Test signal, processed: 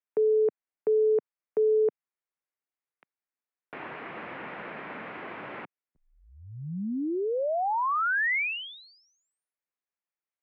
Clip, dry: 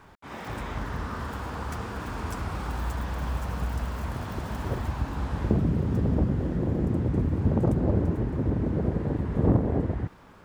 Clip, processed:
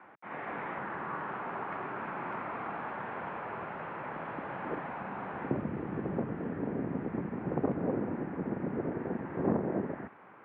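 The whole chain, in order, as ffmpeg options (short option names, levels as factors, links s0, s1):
-af "aemphasis=mode=production:type=bsi,highpass=f=240:t=q:w=0.5412,highpass=f=240:t=q:w=1.307,lowpass=f=2400:t=q:w=0.5176,lowpass=f=2400:t=q:w=0.7071,lowpass=f=2400:t=q:w=1.932,afreqshift=-77"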